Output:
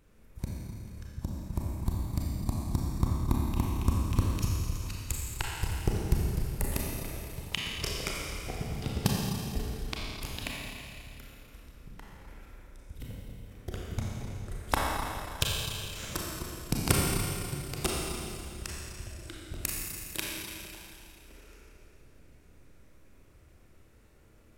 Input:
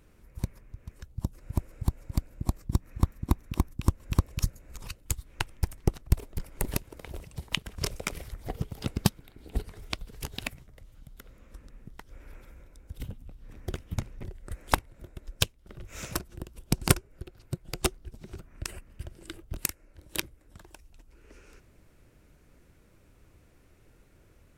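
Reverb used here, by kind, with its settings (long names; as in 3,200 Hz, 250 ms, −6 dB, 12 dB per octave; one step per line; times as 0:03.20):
four-comb reverb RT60 2.6 s, combs from 28 ms, DRR −3.5 dB
level −4.5 dB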